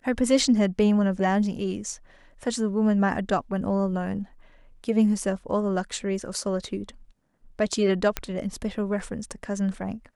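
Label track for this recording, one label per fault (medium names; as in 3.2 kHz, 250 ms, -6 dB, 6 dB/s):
8.170000	8.170000	pop -9 dBFS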